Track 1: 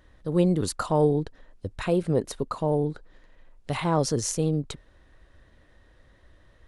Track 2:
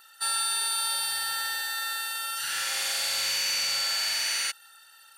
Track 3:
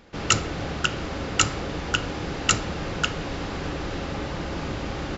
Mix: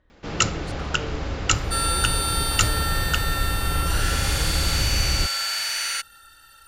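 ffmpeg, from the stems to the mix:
-filter_complex "[0:a]asoftclip=type=tanh:threshold=-27dB,adynamicsmooth=sensitivity=6:basefreq=4.2k,volume=-7dB[a];[1:a]equalizer=f=1.4k:w=5.4:g=6,adelay=1500,volume=1.5dB[b];[2:a]asubboost=boost=7:cutoff=95,adelay=100,volume=-0.5dB[c];[a][b][c]amix=inputs=3:normalize=0"

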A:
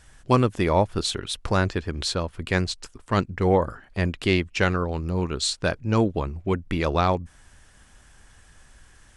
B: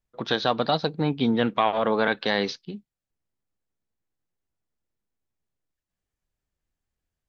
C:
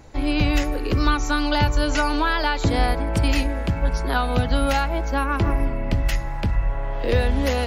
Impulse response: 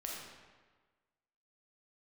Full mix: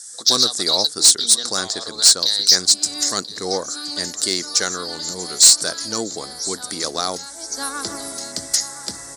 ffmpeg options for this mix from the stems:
-filter_complex "[0:a]volume=0.5dB,asplit=3[a][b][c];[b]volume=-22.5dB[d];[1:a]tiltshelf=f=970:g=-3.5,acompressor=threshold=-33dB:ratio=3,aexciter=amount=3.6:drive=6.9:freq=3.8k,volume=0dB,asplit=2[e][f];[f]volume=-17.5dB[g];[2:a]acrusher=bits=9:mix=0:aa=0.000001,adelay=2450,volume=-2dB,asplit=2[h][i];[i]volume=-14.5dB[j];[c]apad=whole_len=450576[k];[h][k]sidechaincompress=threshold=-37dB:ratio=5:attack=20:release=365[l];[d][g][j]amix=inputs=3:normalize=0,aecho=0:1:1020:1[m];[a][e][l][m]amix=inputs=4:normalize=0,aexciter=amount=11.6:drive=9:freq=4.5k,highpass=340,equalizer=f=370:t=q:w=4:g=-3,equalizer=f=570:t=q:w=4:g=-5,equalizer=f=940:t=q:w=4:g=-8,equalizer=f=2.5k:t=q:w=4:g=-10,equalizer=f=6.4k:t=q:w=4:g=-3,lowpass=f=8.7k:w=0.5412,lowpass=f=8.7k:w=1.3066,asoftclip=type=tanh:threshold=-3dB"

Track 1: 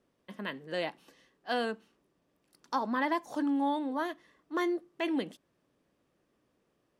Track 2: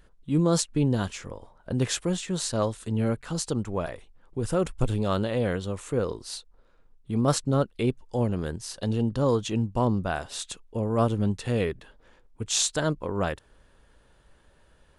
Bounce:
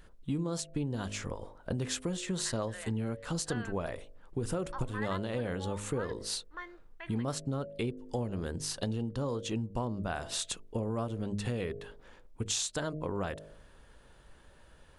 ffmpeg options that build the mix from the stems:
-filter_complex "[0:a]bandpass=f=1.6k:t=q:w=1.8:csg=0,adelay=2000,volume=-5dB[a];[1:a]bandreject=f=51.33:t=h:w=4,bandreject=f=102.66:t=h:w=4,bandreject=f=153.99:t=h:w=4,bandreject=f=205.32:t=h:w=4,bandreject=f=256.65:t=h:w=4,bandreject=f=307.98:t=h:w=4,bandreject=f=359.31:t=h:w=4,bandreject=f=410.64:t=h:w=4,bandreject=f=461.97:t=h:w=4,bandreject=f=513.3:t=h:w=4,bandreject=f=564.63:t=h:w=4,bandreject=f=615.96:t=h:w=4,bandreject=f=667.29:t=h:w=4,acompressor=threshold=-32dB:ratio=12,volume=2dB[b];[a][b]amix=inputs=2:normalize=0"

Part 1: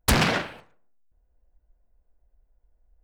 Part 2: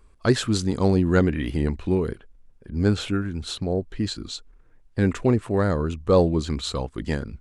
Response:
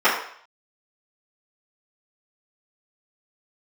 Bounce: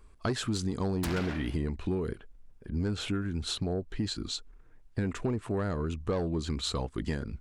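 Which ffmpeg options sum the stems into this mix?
-filter_complex "[0:a]adelay=950,volume=-7.5dB[a];[1:a]asoftclip=type=tanh:threshold=-10.5dB,volume=-1dB[b];[a][b]amix=inputs=2:normalize=0,bandreject=f=530:w=12,asoftclip=type=tanh:threshold=-11.5dB,acompressor=threshold=-28dB:ratio=5"

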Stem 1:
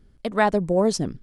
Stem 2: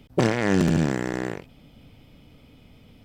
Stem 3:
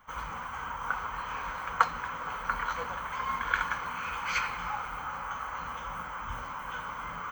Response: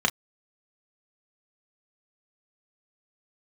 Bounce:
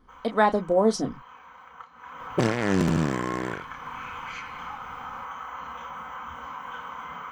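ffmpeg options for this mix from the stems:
-filter_complex "[0:a]volume=-4.5dB,asplit=2[a][b];[b]volume=-11.5dB[c];[1:a]adelay=2200,volume=-2.5dB[d];[2:a]acompressor=threshold=-36dB:ratio=6,volume=-8dB,afade=t=in:st=1.72:d=0.73:silence=0.266073,asplit=2[e][f];[f]volume=-3dB[g];[3:a]atrim=start_sample=2205[h];[c][g]amix=inputs=2:normalize=0[i];[i][h]afir=irnorm=-1:irlink=0[j];[a][d][e][j]amix=inputs=4:normalize=0"

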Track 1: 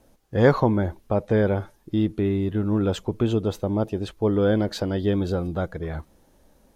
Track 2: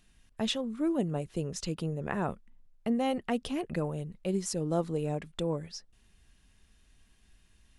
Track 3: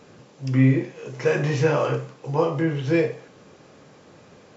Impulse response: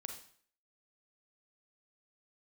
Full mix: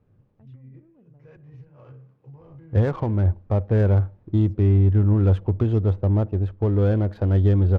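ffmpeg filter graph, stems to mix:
-filter_complex "[0:a]aemphasis=mode=reproduction:type=75kf,alimiter=limit=-15dB:level=0:latency=1:release=430,acrusher=bits=10:mix=0:aa=0.000001,adelay=2400,volume=-1.5dB,asplit=2[a][b];[b]volume=-15dB[c];[1:a]highshelf=f=4.5k:g=-9,bandreject=f=60:t=h:w=6,bandreject=f=120:t=h:w=6,bandreject=f=180:t=h:w=6,bandreject=f=240:t=h:w=6,acompressor=threshold=-44dB:ratio=2,volume=-10dB,asplit=3[d][e][f];[d]atrim=end=1.77,asetpts=PTS-STARTPTS,afade=t=out:st=1.766:d=0.004:c=hsin[g];[e]atrim=start=1.77:end=4.3,asetpts=PTS-STARTPTS,volume=0[h];[f]atrim=start=4.3,asetpts=PTS-STARTPTS,afade=t=in:d=0.004:c=hsin[i];[g][h][i]concat=n=3:v=0:a=1,asplit=2[j][k];[2:a]alimiter=limit=-17.5dB:level=0:latency=1:release=48,volume=-10dB[l];[k]apad=whole_len=201308[m];[l][m]sidechaincompress=threshold=-59dB:ratio=5:attack=12:release=108[n];[j][n]amix=inputs=2:normalize=0,equalizer=f=600:w=0.34:g=-10,acompressor=threshold=-45dB:ratio=6,volume=0dB[o];[3:a]atrim=start_sample=2205[p];[c][p]afir=irnorm=-1:irlink=0[q];[a][o][q]amix=inputs=3:normalize=0,equalizer=f=92:t=o:w=0.7:g=14.5,adynamicsmooth=sensitivity=5:basefreq=1.1k"

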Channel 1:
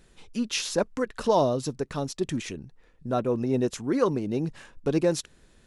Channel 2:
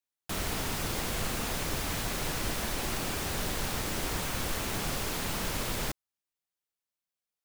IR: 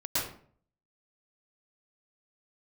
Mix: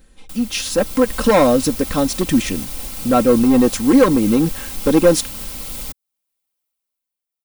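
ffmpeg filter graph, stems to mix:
-filter_complex "[0:a]lowshelf=f=230:g=4.5,asoftclip=type=hard:threshold=-19.5dB,volume=1.5dB[a];[1:a]alimiter=level_in=3dB:limit=-24dB:level=0:latency=1:release=495,volume=-3dB,acrossover=split=180|3000[b][c][d];[c]acompressor=threshold=-53dB:ratio=2[e];[b][e][d]amix=inputs=3:normalize=0,bandreject=f=1.7k:w=6.2,volume=-3dB[f];[a][f]amix=inputs=2:normalize=0,aecho=1:1:3.8:0.67,aexciter=amount=1.7:drive=5.5:freq=8.9k,dynaudnorm=f=150:g=11:m=10dB"

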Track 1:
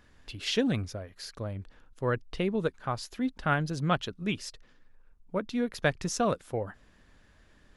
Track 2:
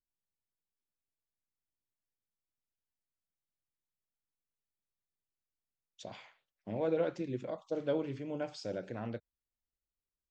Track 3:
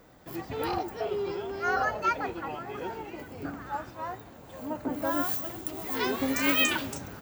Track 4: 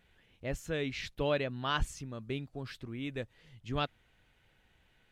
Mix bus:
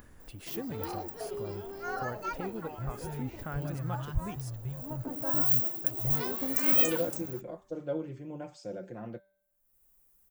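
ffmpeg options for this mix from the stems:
-filter_complex "[0:a]acompressor=threshold=-42dB:ratio=2,volume=-1dB,afade=t=out:st=4.72:d=0.64:silence=0.334965,asplit=2[a][b];[1:a]aecho=1:1:5.7:0.59,bandreject=f=194.1:t=h:w=4,bandreject=f=388.2:t=h:w=4,bandreject=f=582.3:t=h:w=4,bandreject=f=776.4:t=h:w=4,bandreject=f=970.5:t=h:w=4,bandreject=f=1.1646k:t=h:w=4,bandreject=f=1.3587k:t=h:w=4,bandreject=f=1.5528k:t=h:w=4,bandreject=f=1.7469k:t=h:w=4,bandreject=f=1.941k:t=h:w=4,bandreject=f=2.1351k:t=h:w=4,bandreject=f=2.3292k:t=h:w=4,bandreject=f=2.5233k:t=h:w=4,bandreject=f=2.7174k:t=h:w=4,bandreject=f=2.9115k:t=h:w=4,bandreject=f=3.1056k:t=h:w=4,bandreject=f=3.2997k:t=h:w=4,bandreject=f=3.4938k:t=h:w=4,bandreject=f=3.6879k:t=h:w=4,bandreject=f=3.882k:t=h:w=4,bandreject=f=4.0761k:t=h:w=4,bandreject=f=4.2702k:t=h:w=4,bandreject=f=4.4643k:t=h:w=4,bandreject=f=4.6584k:t=h:w=4,bandreject=f=4.8525k:t=h:w=4,bandreject=f=5.0466k:t=h:w=4,bandreject=f=5.2407k:t=h:w=4,bandreject=f=5.4348k:t=h:w=4,bandreject=f=5.6289k:t=h:w=4,bandreject=f=5.823k:t=h:w=4,bandreject=f=6.0171k:t=h:w=4,bandreject=f=6.2112k:t=h:w=4,bandreject=f=6.4053k:t=h:w=4,bandreject=f=6.5994k:t=h:w=4,bandreject=f=6.7935k:t=h:w=4,bandreject=f=6.9876k:t=h:w=4,bandreject=f=7.1817k:t=h:w=4,bandreject=f=7.3758k:t=h:w=4,volume=-1.5dB[c];[2:a]highpass=100,equalizer=f=4.5k:t=o:w=1:g=8,adelay=200,volume=-6.5dB[d];[3:a]lowshelf=f=180:t=q:w=3:g=13,adelay=2350,volume=-12.5dB[e];[b]apad=whole_len=329252[f];[e][f]sidechaingate=range=-33dB:threshold=-59dB:ratio=16:detection=peak[g];[a][c][d][g]amix=inputs=4:normalize=0,crystalizer=i=2:c=0,acompressor=mode=upward:threshold=-45dB:ratio=2.5,equalizer=f=4.1k:t=o:w=2.1:g=-14.5"

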